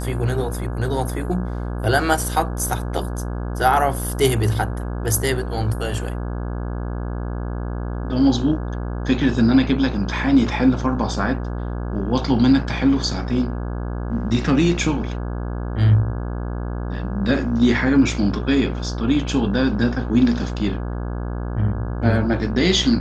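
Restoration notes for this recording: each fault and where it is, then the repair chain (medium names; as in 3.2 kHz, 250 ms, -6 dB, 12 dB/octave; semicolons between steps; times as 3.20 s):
buzz 60 Hz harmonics 28 -26 dBFS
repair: de-hum 60 Hz, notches 28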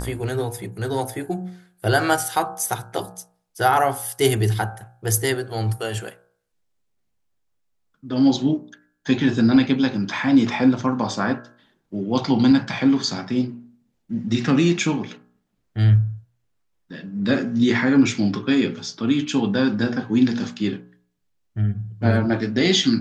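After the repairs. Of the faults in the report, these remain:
nothing left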